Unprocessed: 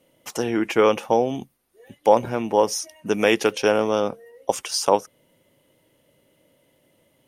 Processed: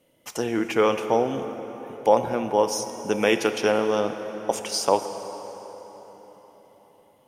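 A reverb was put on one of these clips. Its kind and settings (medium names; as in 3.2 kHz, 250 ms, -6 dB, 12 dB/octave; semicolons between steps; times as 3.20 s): plate-style reverb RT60 4.6 s, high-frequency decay 0.65×, DRR 8 dB; trim -2.5 dB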